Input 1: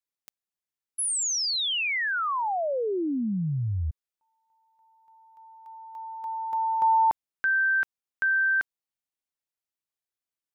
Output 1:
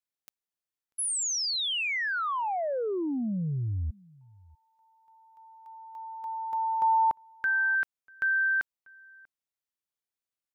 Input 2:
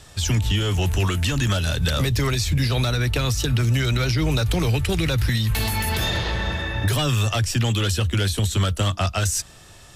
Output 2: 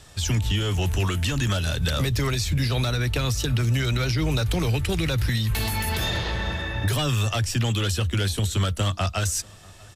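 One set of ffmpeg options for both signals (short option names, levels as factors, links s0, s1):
-filter_complex "[0:a]asplit=2[s0][s1];[s1]adelay=641.4,volume=0.0562,highshelf=f=4000:g=-14.4[s2];[s0][s2]amix=inputs=2:normalize=0,volume=0.75"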